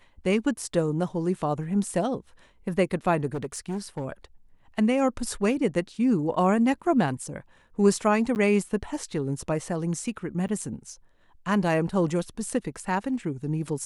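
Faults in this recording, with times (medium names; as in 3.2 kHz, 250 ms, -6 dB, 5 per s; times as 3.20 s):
3.26–4.06 s: clipped -26 dBFS
8.35–8.36 s: dropout 9.4 ms
10.48–10.49 s: dropout 9 ms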